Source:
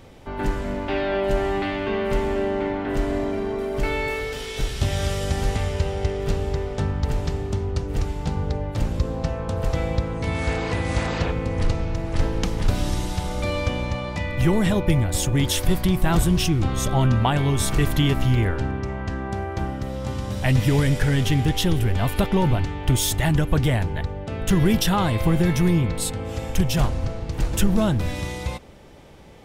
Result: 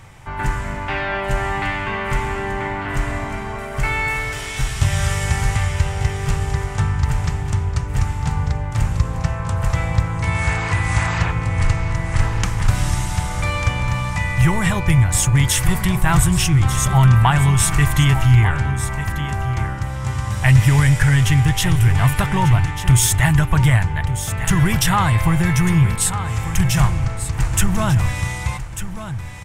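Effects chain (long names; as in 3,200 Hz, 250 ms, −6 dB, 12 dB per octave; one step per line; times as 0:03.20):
octave-band graphic EQ 125/250/500/1,000/2,000/4,000/8,000 Hz +8/−9/−9/+6/+6/−5/+8 dB
single-tap delay 1,194 ms −11 dB
level +2.5 dB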